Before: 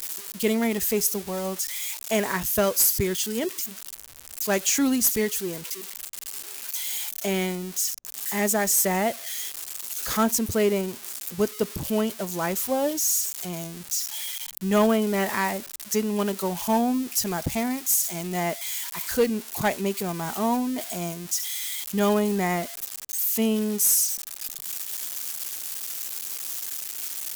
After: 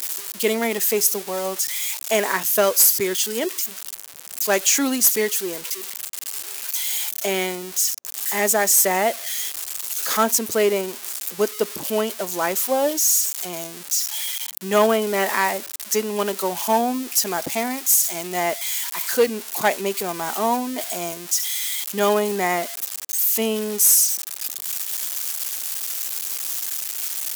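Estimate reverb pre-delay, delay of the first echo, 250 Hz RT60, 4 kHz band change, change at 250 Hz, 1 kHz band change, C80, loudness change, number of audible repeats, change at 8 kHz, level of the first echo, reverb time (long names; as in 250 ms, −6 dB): no reverb audible, no echo audible, no reverb audible, +5.5 dB, −2.5 dB, +5.5 dB, no reverb audible, +4.5 dB, no echo audible, +5.5 dB, no echo audible, no reverb audible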